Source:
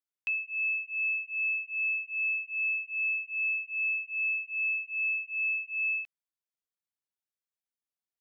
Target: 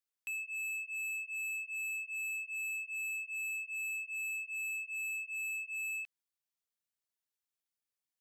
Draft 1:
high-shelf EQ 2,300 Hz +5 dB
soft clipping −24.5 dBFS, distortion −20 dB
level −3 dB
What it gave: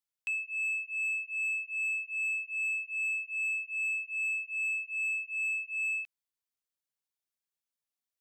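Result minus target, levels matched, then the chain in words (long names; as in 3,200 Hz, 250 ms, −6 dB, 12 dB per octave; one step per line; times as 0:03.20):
soft clipping: distortion −10 dB
high-shelf EQ 2,300 Hz +5 dB
soft clipping −34 dBFS, distortion −9 dB
level −3 dB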